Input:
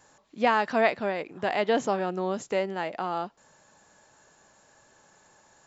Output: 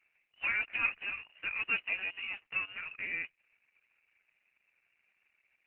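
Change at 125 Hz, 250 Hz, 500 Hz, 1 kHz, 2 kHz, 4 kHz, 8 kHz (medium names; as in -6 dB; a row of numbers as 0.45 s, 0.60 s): under -20 dB, -25.5 dB, -31.0 dB, -20.5 dB, 0.0 dB, -5.0 dB, no reading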